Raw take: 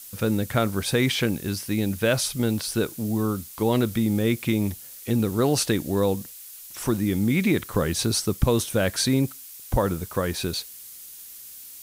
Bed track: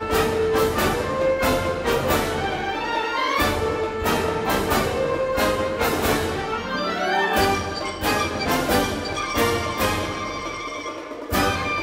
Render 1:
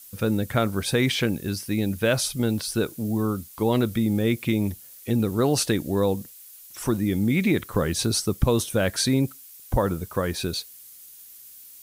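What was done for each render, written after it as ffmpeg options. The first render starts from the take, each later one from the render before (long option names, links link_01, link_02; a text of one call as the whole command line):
ffmpeg -i in.wav -af "afftdn=noise_reduction=6:noise_floor=-43" out.wav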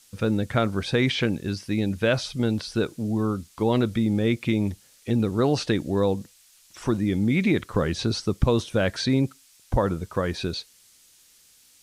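ffmpeg -i in.wav -filter_complex "[0:a]lowpass=6700,acrossover=split=5300[link_01][link_02];[link_02]acompressor=threshold=-45dB:ratio=4:attack=1:release=60[link_03];[link_01][link_03]amix=inputs=2:normalize=0" out.wav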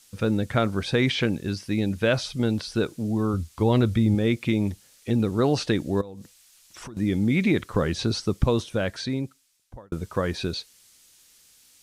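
ffmpeg -i in.wav -filter_complex "[0:a]asettb=1/sr,asplit=3[link_01][link_02][link_03];[link_01]atrim=end=3.334[link_04];[link_02]atrim=start=3.33:end=4.15,asetpts=PTS-STARTPTS,afade=type=in:duration=0.004:curve=qsin,afade=type=out:start_time=0.816:duration=0.004:curve=qsin,equalizer=frequency=80:width=1.4:gain=11.5[link_05];[link_03]atrim=start=4.146[link_06];[link_04][link_05]acrossfade=duration=0.004:curve1=hsin:curve2=qsin[link_07];[link_07][link_06]acrossfade=duration=0.004:curve1=qsin:curve2=hsin,asettb=1/sr,asplit=3[link_08][link_09][link_10];[link_08]atrim=end=6.014[link_11];[link_09]atrim=start=6.01:end=6.97,asetpts=PTS-STARTPTS,afade=type=in:duration=0.004:curve=qsin,afade=type=out:start_time=0.956:duration=0.004:curve=qsin,acompressor=threshold=-35dB:ratio=20:attack=3.2:release=140:knee=1:detection=peak[link_12];[link_10]atrim=start=6.966[link_13];[link_11][link_12]acrossfade=duration=0.004:curve1=hsin:curve2=qsin[link_14];[link_14][link_13]acrossfade=duration=0.004:curve1=qsin:curve2=hsin,asplit=2[link_15][link_16];[link_15]atrim=end=9.92,asetpts=PTS-STARTPTS,afade=type=out:start_time=8.33:duration=1.59[link_17];[link_16]atrim=start=9.92,asetpts=PTS-STARTPTS,afade=type=in:duration=0.004:curve=hsin[link_18];[link_17][link_18]concat=n=2:v=0:a=1" out.wav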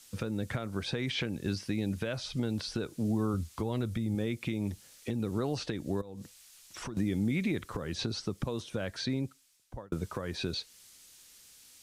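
ffmpeg -i in.wav -filter_complex "[0:a]acrossover=split=94|7100[link_01][link_02][link_03];[link_01]acompressor=threshold=-42dB:ratio=4[link_04];[link_02]acompressor=threshold=-26dB:ratio=4[link_05];[link_03]acompressor=threshold=-54dB:ratio=4[link_06];[link_04][link_05][link_06]amix=inputs=3:normalize=0,alimiter=limit=-21.5dB:level=0:latency=1:release=369" out.wav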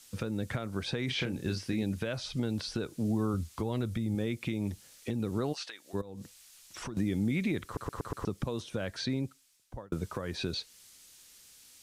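ffmpeg -i in.wav -filter_complex "[0:a]asettb=1/sr,asplit=3[link_01][link_02][link_03];[link_01]atrim=end=1.054[link_04];[link_02]atrim=start=1.05:end=1.83,asetpts=PTS-STARTPTS,afade=type=in:duration=0.004:curve=qsin,afade=type=out:start_time=0.776:duration=0.004:curve=qsin,asplit=2[link_05][link_06];[link_06]adelay=32,volume=-8dB[link_07];[link_05][link_07]amix=inputs=2:normalize=0,atrim=end_sample=34398[link_08];[link_03]atrim=start=1.826[link_09];[link_04][link_08]acrossfade=duration=0.004:curve1=hsin:curve2=qsin[link_10];[link_10][link_09]acrossfade=duration=0.004:curve1=qsin:curve2=hsin,asplit=3[link_11][link_12][link_13];[link_11]afade=type=out:start_time=5.52:duration=0.02[link_14];[link_12]highpass=1200,afade=type=in:start_time=5.52:duration=0.02,afade=type=out:start_time=5.93:duration=0.02[link_15];[link_13]afade=type=in:start_time=5.93:duration=0.02[link_16];[link_14][link_15][link_16]amix=inputs=3:normalize=0,asplit=6[link_17][link_18][link_19][link_20][link_21][link_22];[link_17]atrim=end=7.772[link_23];[link_18]atrim=start=7.648:end=7.772[link_24];[link_19]atrim=start=7.648:end=7.772[link_25];[link_20]atrim=start=7.648:end=7.772[link_26];[link_21]atrim=start=7.648:end=7.772[link_27];[link_22]atrim=start=8.248[link_28];[link_23][link_24]acrossfade=duration=0.004:curve1=hsin:curve2=hsin[link_29];[link_29][link_25]acrossfade=duration=0.004:curve1=hsin:curve2=hsin[link_30];[link_30][link_26]acrossfade=duration=0.004:curve1=hsin:curve2=hsin[link_31];[link_31][link_27]acrossfade=duration=0.004:curve1=hsin:curve2=hsin[link_32];[link_32][link_28]acrossfade=duration=0.004:curve1=hsin:curve2=hsin" out.wav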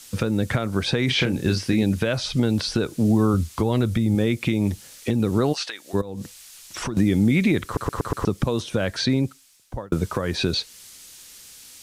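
ffmpeg -i in.wav -af "volume=11.5dB" out.wav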